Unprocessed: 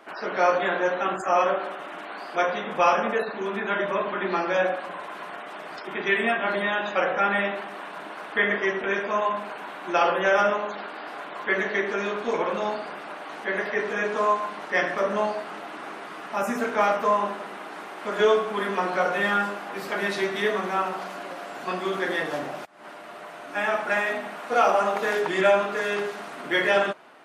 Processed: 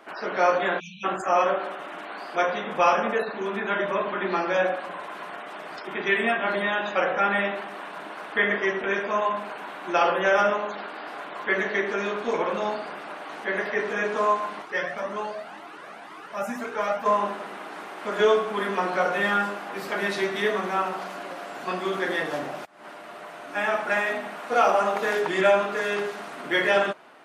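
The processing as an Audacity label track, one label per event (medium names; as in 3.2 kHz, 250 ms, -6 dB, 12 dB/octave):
0.790000	1.040000	spectral selection erased 220–2300 Hz
14.620000	17.060000	Shepard-style flanger rising 2 Hz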